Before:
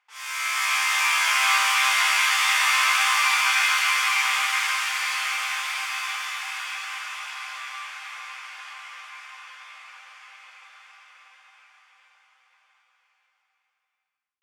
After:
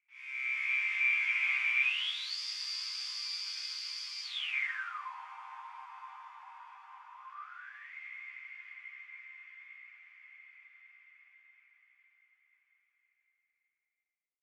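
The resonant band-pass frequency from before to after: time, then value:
resonant band-pass, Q 16
0:01.79 2,300 Hz
0:02.39 4,800 Hz
0:04.23 4,800 Hz
0:04.52 2,500 Hz
0:05.12 940 Hz
0:07.16 940 Hz
0:07.96 2,100 Hz

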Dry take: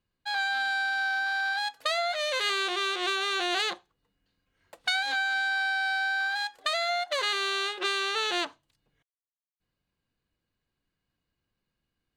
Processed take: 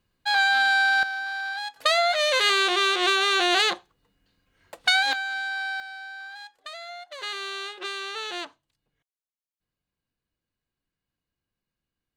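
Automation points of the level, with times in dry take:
+8 dB
from 0:01.03 −2 dB
from 0:01.76 +7 dB
from 0:05.13 −2 dB
from 0:05.80 −11 dB
from 0:07.22 −4.5 dB

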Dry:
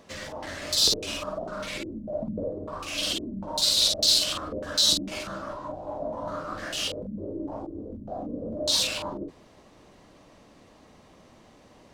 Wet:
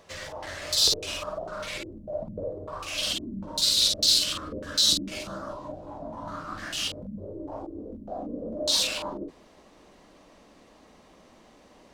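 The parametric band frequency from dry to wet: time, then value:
parametric band −11 dB 0.76 octaves
0:02.97 240 Hz
0:03.37 750 Hz
0:05.09 750 Hz
0:05.40 2,900 Hz
0:05.97 520 Hz
0:06.90 520 Hz
0:07.90 110 Hz

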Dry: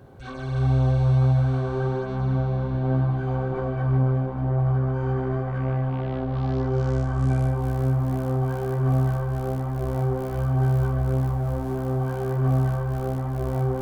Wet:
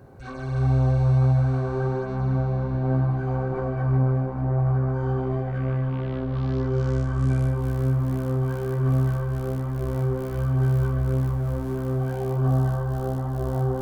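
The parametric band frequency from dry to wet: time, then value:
parametric band −10 dB 0.36 octaves
0:04.88 3,300 Hz
0:05.73 750 Hz
0:11.93 750 Hz
0:12.50 2,300 Hz

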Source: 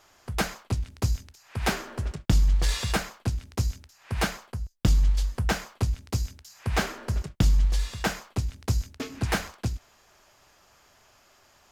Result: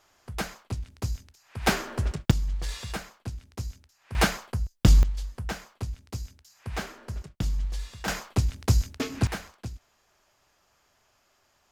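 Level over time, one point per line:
−5 dB
from 0:01.67 +3 dB
from 0:02.31 −8 dB
from 0:04.15 +4 dB
from 0:05.03 −7.5 dB
from 0:08.08 +4 dB
from 0:09.27 −8 dB

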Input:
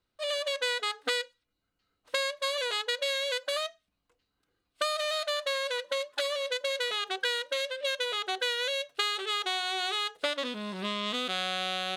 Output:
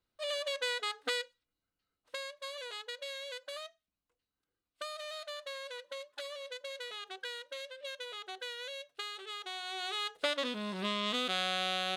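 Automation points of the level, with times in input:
0:01.21 −4.5 dB
0:02.26 −12 dB
0:09.42 −12 dB
0:10.31 −1.5 dB

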